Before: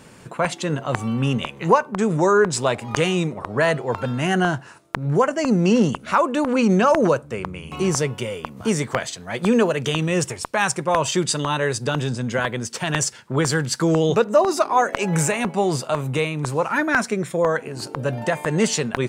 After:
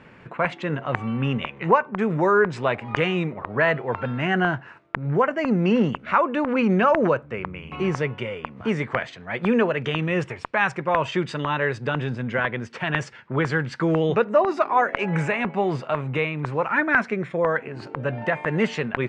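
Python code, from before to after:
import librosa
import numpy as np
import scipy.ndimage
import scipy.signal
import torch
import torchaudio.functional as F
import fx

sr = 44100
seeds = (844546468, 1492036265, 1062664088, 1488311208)

y = fx.lowpass_res(x, sr, hz=2200.0, q=1.7)
y = F.gain(torch.from_numpy(y), -3.0).numpy()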